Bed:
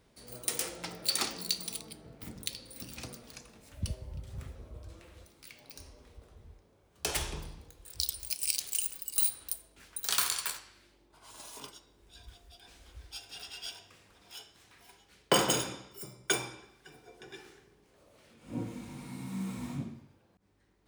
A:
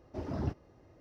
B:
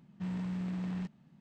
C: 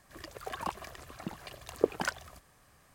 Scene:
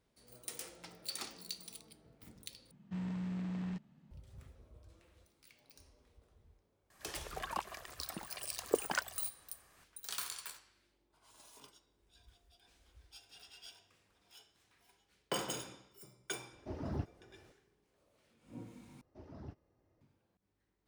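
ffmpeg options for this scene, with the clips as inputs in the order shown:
-filter_complex "[1:a]asplit=2[s0][s1];[0:a]volume=0.251[s2];[3:a]lowshelf=f=380:g=-9[s3];[s2]asplit=3[s4][s5][s6];[s4]atrim=end=2.714[s7];[2:a]atrim=end=1.4,asetpts=PTS-STARTPTS,volume=0.708[s8];[s5]atrim=start=4.106:end=19.014[s9];[s1]atrim=end=1,asetpts=PTS-STARTPTS,volume=0.168[s10];[s6]atrim=start=20.006[s11];[s3]atrim=end=2.94,asetpts=PTS-STARTPTS,volume=0.841,afade=t=in:d=0.004:c=hsin,afade=t=out:st=2.936:d=0.004:c=hsin,adelay=304290S[s12];[s0]atrim=end=1,asetpts=PTS-STARTPTS,volume=0.596,afade=t=in:d=0.004:c=hsin,afade=t=out:st=0.996:d=0.004:c=hsin,adelay=728532S[s13];[s7][s8]acrossfade=d=0.004:c1=hsin:c2=hsin[s14];[s14][s9]acrossfade=d=0.004:c1=hsin:c2=hsin[s15];[s15][s10]acrossfade=d=0.004:c1=hsin:c2=hsin[s16];[s16][s11]acrossfade=d=0.004:c1=hsin:c2=hsin[s17];[s17][s12][s13]amix=inputs=3:normalize=0"

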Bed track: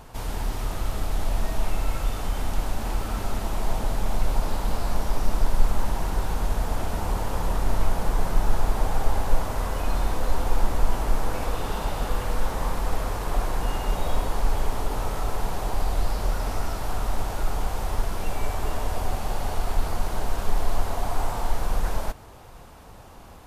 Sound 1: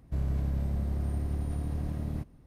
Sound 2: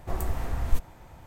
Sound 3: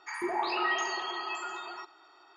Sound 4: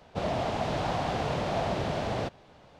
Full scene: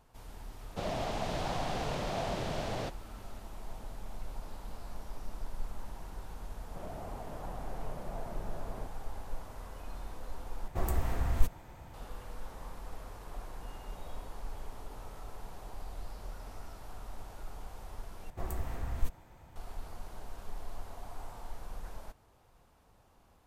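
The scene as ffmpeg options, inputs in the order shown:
-filter_complex "[4:a]asplit=2[s0][s1];[2:a]asplit=2[s2][s3];[0:a]volume=0.119[s4];[s0]highshelf=f=6200:g=11.5[s5];[s1]lowpass=1400[s6];[s4]asplit=3[s7][s8][s9];[s7]atrim=end=10.684[s10];[s2]atrim=end=1.26,asetpts=PTS-STARTPTS,volume=0.841[s11];[s8]atrim=start=11.936:end=18.304[s12];[s3]atrim=end=1.26,asetpts=PTS-STARTPTS,volume=0.447[s13];[s9]atrim=start=19.556[s14];[s5]atrim=end=2.79,asetpts=PTS-STARTPTS,volume=0.501,afade=t=in:d=0.004:c=hsin,afade=t=out:st=2.786:d=0.004:c=hsin,adelay=610[s15];[s6]atrim=end=2.79,asetpts=PTS-STARTPTS,volume=0.178,afade=t=in:d=0.004:c=hsin,afade=t=out:st=2.786:d=0.004:c=hsin,adelay=6590[s16];[s10][s11]acrossfade=d=0.004:c1=hsin:c2=hsin[s17];[s17][s12]acrossfade=d=0.004:c1=hsin:c2=hsin[s18];[s18][s13]acrossfade=d=0.004:c1=hsin:c2=hsin[s19];[s19][s14]acrossfade=d=0.004:c1=hsin:c2=hsin[s20];[s20][s15][s16]amix=inputs=3:normalize=0"

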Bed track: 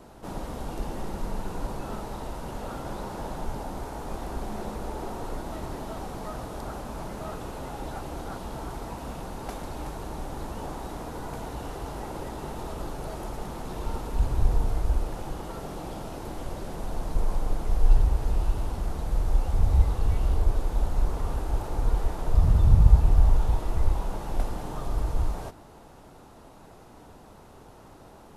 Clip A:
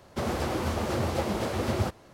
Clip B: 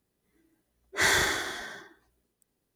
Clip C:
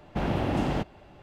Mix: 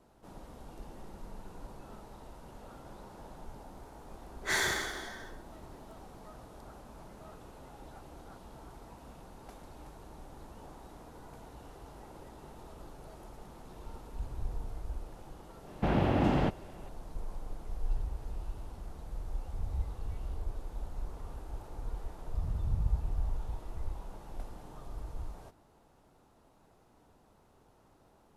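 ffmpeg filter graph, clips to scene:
-filter_complex "[0:a]volume=0.188[s0];[3:a]aemphasis=mode=reproduction:type=cd[s1];[2:a]atrim=end=2.75,asetpts=PTS-STARTPTS,volume=0.473,afade=t=in:d=0.004:c=hsin,afade=t=out:st=2.746:d=0.004:c=hsin,adelay=153909S[s2];[s1]atrim=end=1.22,asetpts=PTS-STARTPTS,volume=0.944,afade=t=in:d=0.004:c=hsin,afade=t=out:st=1.216:d=0.004:c=hsin,adelay=15670[s3];[s0][s2][s3]amix=inputs=3:normalize=0"

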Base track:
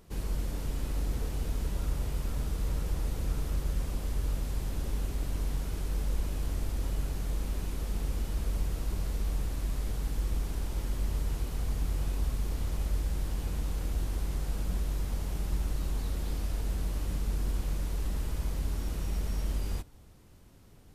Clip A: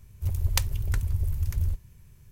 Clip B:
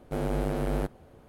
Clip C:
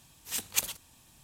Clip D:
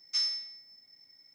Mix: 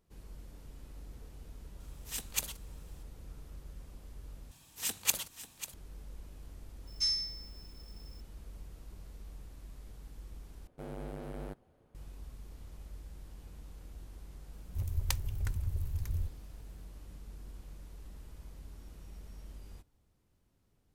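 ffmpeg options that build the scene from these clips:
-filter_complex "[3:a]asplit=2[s0][s1];[0:a]volume=0.141[s2];[s1]aecho=1:1:543:0.211[s3];[4:a]aemphasis=mode=production:type=50fm[s4];[s2]asplit=3[s5][s6][s7];[s5]atrim=end=4.514[s8];[s3]atrim=end=1.23,asetpts=PTS-STARTPTS,volume=0.891[s9];[s6]atrim=start=5.736:end=10.674[s10];[2:a]atrim=end=1.28,asetpts=PTS-STARTPTS,volume=0.211[s11];[s7]atrim=start=11.946[s12];[s0]atrim=end=1.23,asetpts=PTS-STARTPTS,volume=0.531,afade=t=in:d=0.004:c=hsin,afade=t=out:st=1.226:d=0.004:c=hsin,adelay=1800[s13];[s4]atrim=end=1.34,asetpts=PTS-STARTPTS,volume=0.447,afade=t=in:d=0.004:c=hsin,afade=t=out:st=1.336:d=0.004:c=hsin,adelay=6870[s14];[1:a]atrim=end=2.31,asetpts=PTS-STARTPTS,volume=0.398,afade=t=in:d=0.004:c=hsin,afade=t=out:st=2.306:d=0.004:c=hsin,adelay=14530[s15];[s8][s9]acrossfade=d=0.004:c1=hsin:c2=hsin[s16];[s16][s10]acrossfade=d=0.004:c1=hsin:c2=hsin[s17];[s17][s11]acrossfade=d=0.004:c1=hsin:c2=hsin[s18];[s18][s12]acrossfade=d=0.004:c1=hsin:c2=hsin[s19];[s19][s13][s14][s15]amix=inputs=4:normalize=0"

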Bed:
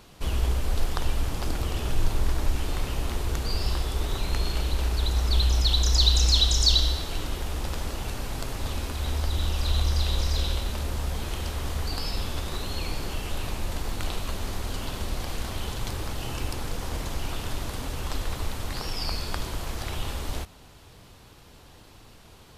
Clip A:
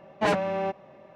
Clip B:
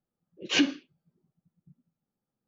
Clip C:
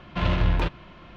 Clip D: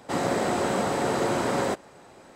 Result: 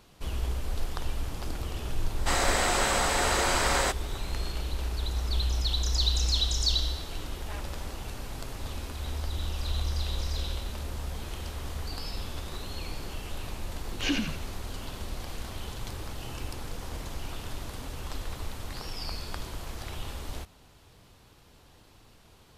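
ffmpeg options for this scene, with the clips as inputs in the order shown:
-filter_complex "[0:a]volume=0.501[s0];[4:a]tiltshelf=f=760:g=-10[s1];[1:a]highpass=1000[s2];[2:a]asplit=7[s3][s4][s5][s6][s7][s8][s9];[s4]adelay=87,afreqshift=-66,volume=0.668[s10];[s5]adelay=174,afreqshift=-132,volume=0.313[s11];[s6]adelay=261,afreqshift=-198,volume=0.148[s12];[s7]adelay=348,afreqshift=-264,volume=0.0692[s13];[s8]adelay=435,afreqshift=-330,volume=0.0327[s14];[s9]adelay=522,afreqshift=-396,volume=0.0153[s15];[s3][s10][s11][s12][s13][s14][s15]amix=inputs=7:normalize=0[s16];[s1]atrim=end=2.35,asetpts=PTS-STARTPTS,volume=0.841,afade=t=in:d=0.004:c=hsin,afade=t=out:st=2.346:d=0.004:c=hsin,adelay=2170[s17];[s2]atrim=end=1.15,asetpts=PTS-STARTPTS,volume=0.15,afade=t=in:d=0.004:c=hsin,afade=t=out:st=1.146:d=0.004:c=hsin,adelay=7260[s18];[s16]atrim=end=2.47,asetpts=PTS-STARTPTS,volume=0.501,afade=t=in:d=0.004:c=hsin,afade=t=out:st=2.466:d=0.004:c=hsin,adelay=13500[s19];[s0][s17][s18][s19]amix=inputs=4:normalize=0"

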